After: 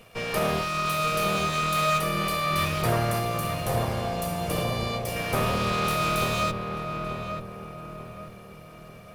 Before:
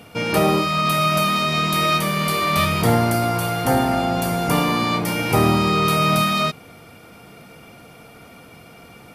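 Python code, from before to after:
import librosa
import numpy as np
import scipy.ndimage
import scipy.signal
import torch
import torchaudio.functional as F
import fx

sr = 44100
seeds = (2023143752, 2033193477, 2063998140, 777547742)

y = fx.lower_of_two(x, sr, delay_ms=1.7)
y = fx.peak_eq(y, sr, hz=1400.0, db=-9.0, octaves=1.1, at=(3.19, 5.16))
y = fx.echo_filtered(y, sr, ms=887, feedback_pct=48, hz=1200.0, wet_db=-4)
y = y * 10.0 ** (-6.5 / 20.0)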